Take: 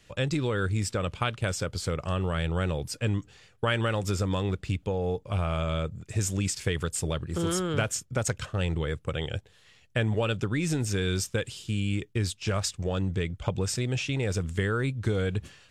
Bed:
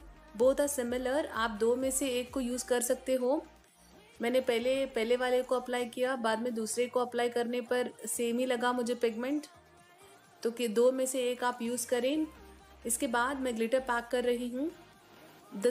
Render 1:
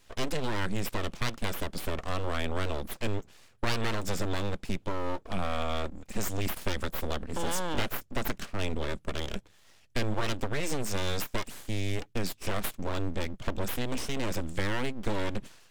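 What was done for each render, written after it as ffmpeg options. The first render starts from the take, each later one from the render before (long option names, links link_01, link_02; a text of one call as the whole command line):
ffmpeg -i in.wav -af "aeval=exprs='abs(val(0))':channel_layout=same" out.wav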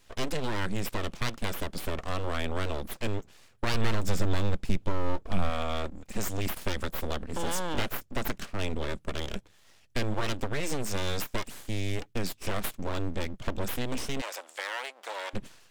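ffmpeg -i in.wav -filter_complex "[0:a]asettb=1/sr,asplit=3[link_01][link_02][link_03];[link_01]atrim=end=3.744[link_04];[link_02]atrim=start=3.74:end=5.5,asetpts=PTS-STARTPTS,afade=type=in:duration=0.004:curve=qsin,afade=type=out:start_time=1.756:duration=0.004:curve=qsin,lowshelf=frequency=150:gain=8.5[link_05];[link_03]atrim=start=5.496[link_06];[link_04][link_05]acrossfade=duration=0.004:curve1=hsin:curve2=qsin[link_07];[link_07][link_06]acrossfade=duration=0.004:curve1=qsin:curve2=hsin,asplit=3[link_08][link_09][link_10];[link_08]afade=type=out:start_time=14.2:duration=0.02[link_11];[link_09]highpass=frequency=600:width=0.5412,highpass=frequency=600:width=1.3066,afade=type=in:start_time=14.2:duration=0.02,afade=type=out:start_time=15.33:duration=0.02[link_12];[link_10]afade=type=in:start_time=15.33:duration=0.02[link_13];[link_11][link_12][link_13]amix=inputs=3:normalize=0" out.wav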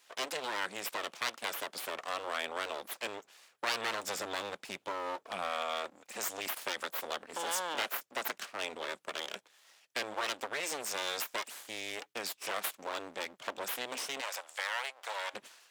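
ffmpeg -i in.wav -af "highpass=640" out.wav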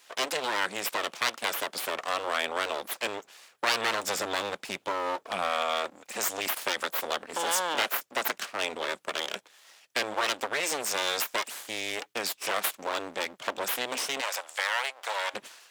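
ffmpeg -i in.wav -af "volume=7dB" out.wav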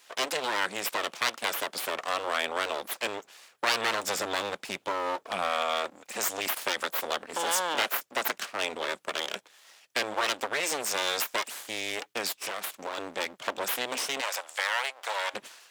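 ffmpeg -i in.wav -filter_complex "[0:a]asettb=1/sr,asplit=3[link_01][link_02][link_03];[link_01]atrim=end=12.334[link_04];[link_02]atrim=start=12.33:end=12.98,asetpts=PTS-STARTPTS,afade=type=in:duration=0.004:curve=qsin,afade=type=out:start_time=0.646:duration=0.004:curve=qsin,acompressor=threshold=-30dB:ratio=6:attack=3.2:release=140:knee=1:detection=peak[link_05];[link_03]atrim=start=12.976[link_06];[link_04][link_05]acrossfade=duration=0.004:curve1=hsin:curve2=qsin[link_07];[link_07][link_06]acrossfade=duration=0.004:curve1=qsin:curve2=hsin" out.wav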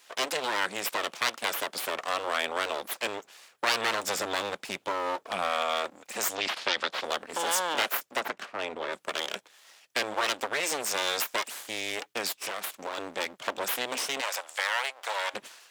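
ffmpeg -i in.wav -filter_complex "[0:a]asettb=1/sr,asplit=3[link_01][link_02][link_03];[link_01]atrim=end=6.354[link_04];[link_02]atrim=start=6.35:end=7.04,asetpts=PTS-STARTPTS,afade=type=in:duration=0.004:curve=qsin,afade=type=out:start_time=0.686:duration=0.004:curve=qsin,lowpass=frequency=4300:width_type=q:width=1.7[link_05];[link_03]atrim=start=7.036[link_06];[link_04][link_05]acrossfade=duration=0.004:curve1=hsin:curve2=qsin[link_07];[link_07][link_06]acrossfade=duration=0.004:curve1=qsin:curve2=hsin,asplit=3[link_08][link_09][link_10];[link_08]afade=type=out:start_time=8.19:duration=0.02[link_11];[link_09]lowpass=frequency=1700:poles=1,afade=type=in:start_time=8.19:duration=0.02,afade=type=out:start_time=8.92:duration=0.02[link_12];[link_10]afade=type=in:start_time=8.92:duration=0.02[link_13];[link_11][link_12][link_13]amix=inputs=3:normalize=0" out.wav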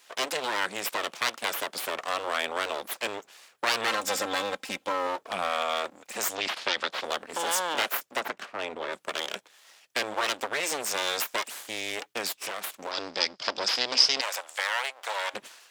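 ffmpeg -i in.wav -filter_complex "[0:a]asettb=1/sr,asplit=3[link_01][link_02][link_03];[link_01]atrim=end=3.874[link_04];[link_02]atrim=start=3.87:end=5.07,asetpts=PTS-STARTPTS,afade=type=in:duration=0.004:curve=qsin,afade=type=out:start_time=1.196:duration=0.004:curve=qsin,aecho=1:1:3.8:0.59,atrim=end_sample=52920[link_05];[link_03]atrim=start=5.066[link_06];[link_04][link_05]acrossfade=duration=0.004:curve1=hsin:curve2=qsin[link_07];[link_07][link_06]acrossfade=duration=0.004:curve1=qsin:curve2=hsin,asettb=1/sr,asplit=3[link_08][link_09][link_10];[link_08]atrim=end=12.914[link_11];[link_09]atrim=start=12.91:end=14.21,asetpts=PTS-STARTPTS,afade=type=in:duration=0.004:curve=qsin,afade=type=out:start_time=1.296:duration=0.004:curve=qsin,lowpass=frequency=5000:width_type=q:width=11[link_12];[link_10]atrim=start=14.206[link_13];[link_11][link_12]acrossfade=duration=0.004:curve1=hsin:curve2=qsin[link_14];[link_14][link_13]acrossfade=duration=0.004:curve1=qsin:curve2=hsin" out.wav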